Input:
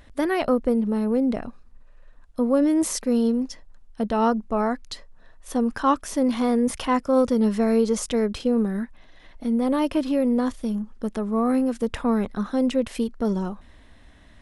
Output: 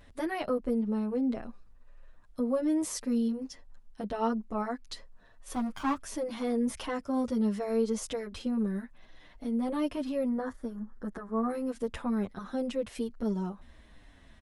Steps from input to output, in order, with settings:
0:05.53–0:05.97: lower of the sound and its delayed copy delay 0.86 ms
0:10.28–0:11.50: high shelf with overshoot 2,100 Hz −7 dB, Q 3
in parallel at +1 dB: downward compressor, threshold −34 dBFS, peak gain reduction 18 dB
0:00.78–0:01.39: on the sum: low-pass filter 8,500 Hz 12 dB per octave
barber-pole flanger 8.2 ms −1.7 Hz
level −8 dB

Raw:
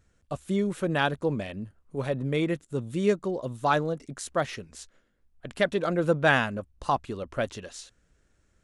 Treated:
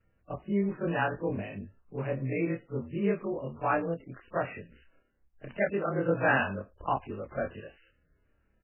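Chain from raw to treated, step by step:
every overlapping window played backwards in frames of 60 ms
far-end echo of a speakerphone 110 ms, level −30 dB
MP3 8 kbit/s 8,000 Hz

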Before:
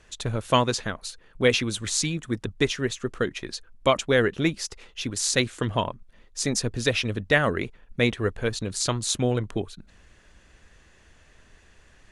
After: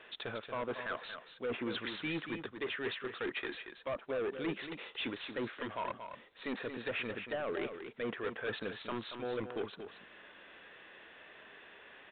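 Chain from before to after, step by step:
high-pass filter 370 Hz 12 dB per octave
treble cut that deepens with the level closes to 890 Hz, closed at −19 dBFS
dynamic equaliser 1,600 Hz, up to +5 dB, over −45 dBFS, Q 1.2
harmonic and percussive parts rebalanced percussive −7 dB
reversed playback
downward compressor 6 to 1, threshold −39 dBFS, peak gain reduction 18.5 dB
reversed playback
hard clipping −39.5 dBFS, distortion −9 dB
on a send: single-tap delay 231 ms −8.5 dB
on the sum: level +7 dB
A-law companding 64 kbit/s 8,000 Hz

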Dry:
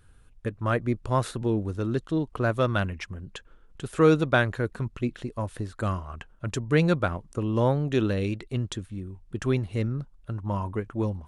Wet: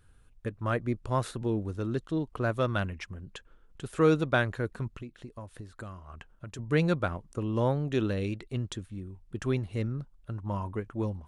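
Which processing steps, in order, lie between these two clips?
0:05.01–0:06.59: downward compressor 6 to 1, threshold −36 dBFS, peak gain reduction 13 dB
level −4 dB

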